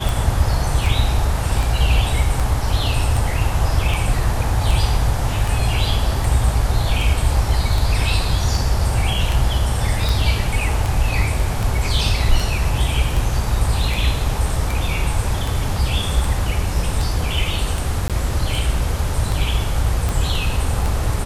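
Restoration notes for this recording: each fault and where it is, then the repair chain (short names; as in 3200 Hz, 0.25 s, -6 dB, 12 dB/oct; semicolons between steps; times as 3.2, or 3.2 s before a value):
tick 78 rpm
18.08–18.1 gap 17 ms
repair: de-click; interpolate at 18.08, 17 ms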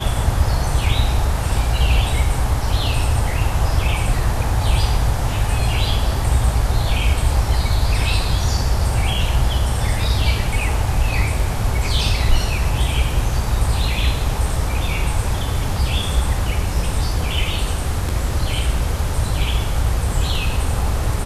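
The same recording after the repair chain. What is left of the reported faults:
none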